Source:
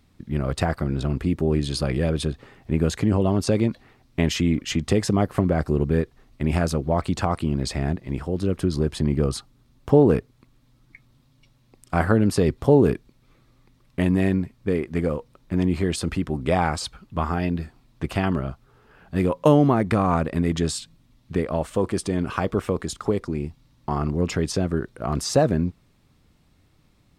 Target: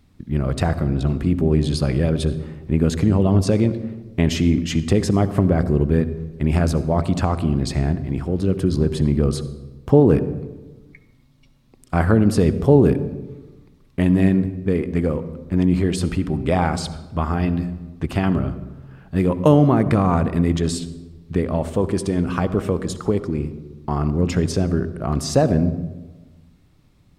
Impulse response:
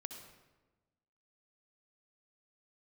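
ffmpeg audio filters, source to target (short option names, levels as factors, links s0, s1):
-filter_complex "[0:a]asplit=2[s0][s1];[1:a]atrim=start_sample=2205,lowshelf=f=480:g=10.5[s2];[s1][s2]afir=irnorm=-1:irlink=0,volume=0.708[s3];[s0][s3]amix=inputs=2:normalize=0,volume=0.708"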